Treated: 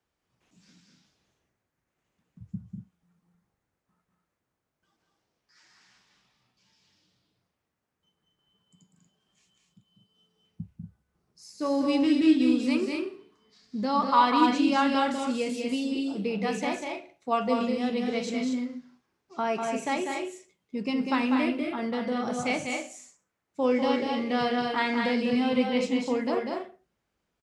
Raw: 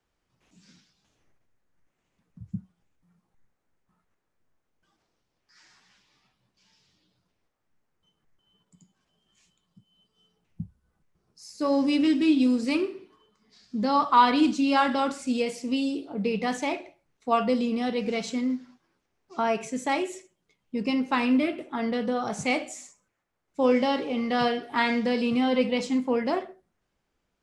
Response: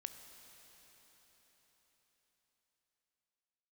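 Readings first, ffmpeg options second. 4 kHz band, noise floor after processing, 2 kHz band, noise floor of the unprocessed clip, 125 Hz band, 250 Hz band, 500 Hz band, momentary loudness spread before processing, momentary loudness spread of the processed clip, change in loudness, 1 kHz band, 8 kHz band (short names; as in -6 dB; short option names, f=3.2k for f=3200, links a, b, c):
-1.0 dB, -83 dBFS, -1.0 dB, -78 dBFS, -1.0 dB, -0.5 dB, -1.0 dB, 15 LU, 17 LU, -1.5 dB, -1.5 dB, -1.0 dB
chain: -filter_complex "[0:a]highpass=52,asplit=2[a][b];[b]aecho=0:1:195.3|236.2:0.562|0.501[c];[a][c]amix=inputs=2:normalize=0,volume=-3dB"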